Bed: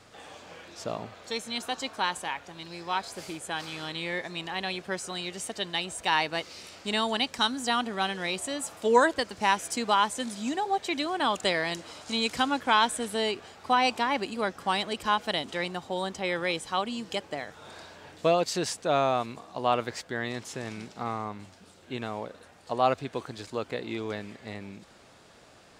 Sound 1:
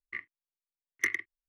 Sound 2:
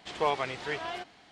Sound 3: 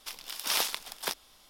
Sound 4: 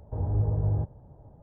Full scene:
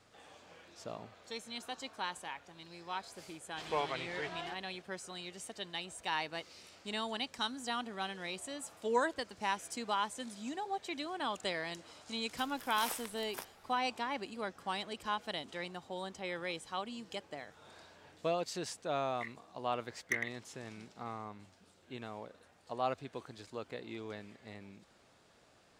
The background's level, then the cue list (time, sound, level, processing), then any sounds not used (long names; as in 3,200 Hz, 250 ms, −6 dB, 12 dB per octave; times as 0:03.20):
bed −10.5 dB
0:03.51: mix in 2 −7 dB
0:12.31: mix in 3 −9.5 dB + parametric band 4,000 Hz −10 dB 1.1 octaves
0:19.08: mix in 1 −6 dB
not used: 4